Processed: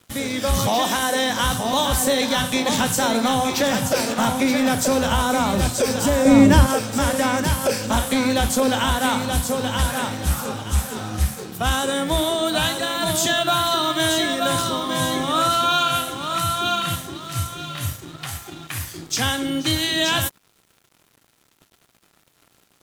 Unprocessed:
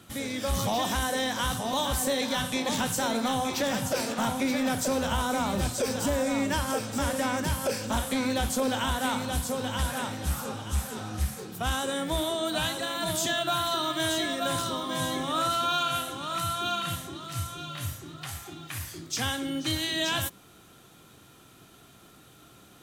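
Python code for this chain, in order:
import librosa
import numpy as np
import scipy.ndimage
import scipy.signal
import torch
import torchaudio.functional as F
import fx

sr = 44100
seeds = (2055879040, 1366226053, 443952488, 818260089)

y = fx.highpass(x, sr, hz=200.0, slope=12, at=(0.67, 1.3))
y = fx.low_shelf(y, sr, hz=490.0, db=11.5, at=(6.25, 6.67))
y = np.sign(y) * np.maximum(np.abs(y) - 10.0 ** (-50.0 / 20.0), 0.0)
y = y * 10.0 ** (8.5 / 20.0)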